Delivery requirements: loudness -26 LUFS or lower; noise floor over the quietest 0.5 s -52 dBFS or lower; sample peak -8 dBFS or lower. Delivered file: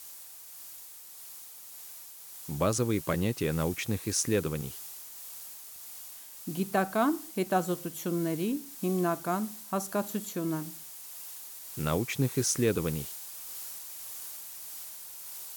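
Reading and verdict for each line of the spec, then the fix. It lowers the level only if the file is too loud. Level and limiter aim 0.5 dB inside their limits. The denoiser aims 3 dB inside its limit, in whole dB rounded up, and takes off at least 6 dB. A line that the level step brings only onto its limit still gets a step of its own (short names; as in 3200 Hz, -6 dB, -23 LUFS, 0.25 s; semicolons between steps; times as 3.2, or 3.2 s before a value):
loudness -32.0 LUFS: OK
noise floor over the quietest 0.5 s -48 dBFS: fail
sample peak -13.5 dBFS: OK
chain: denoiser 7 dB, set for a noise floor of -48 dBFS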